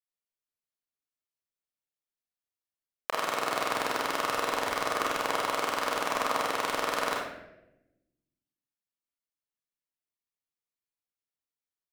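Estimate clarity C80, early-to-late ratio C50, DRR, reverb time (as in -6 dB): 5.0 dB, 2.0 dB, -2.5 dB, 0.90 s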